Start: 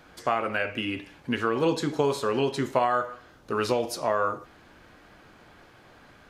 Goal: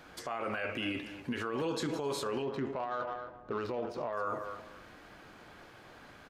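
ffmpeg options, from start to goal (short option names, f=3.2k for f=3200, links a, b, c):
-filter_complex "[0:a]lowshelf=f=180:g=-3.5,asplit=2[a][b];[b]adelay=260,lowpass=f=2.4k:p=1,volume=-16dB,asplit=2[c][d];[d]adelay=260,lowpass=f=2.4k:p=1,volume=0.23[e];[a][c][e]amix=inputs=3:normalize=0,acompressor=threshold=-26dB:ratio=6,alimiter=level_in=2dB:limit=-24dB:level=0:latency=1:release=20,volume=-2dB,asettb=1/sr,asplit=3[f][g][h];[f]atrim=end=2.424[i];[g]atrim=start=2.42:end=4.13,asetpts=PTS-STARTPTS,afade=t=in:d=0.004:c=qsin,afade=t=out:st=1.706:d=0.004:c=qsin,adynamicsmooth=sensitivity=3:basefreq=1.3k[j];[h]atrim=start=4.126[k];[i][j]acrossfade=d=0.004:c1=hsin:c2=qsin[l];[l][k]acrossfade=d=0.004:c1=qsin:c2=hsin"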